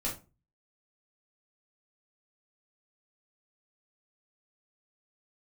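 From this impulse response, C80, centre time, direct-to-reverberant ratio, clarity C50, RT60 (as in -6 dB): 16.0 dB, 24 ms, -5.0 dB, 8.5 dB, 0.30 s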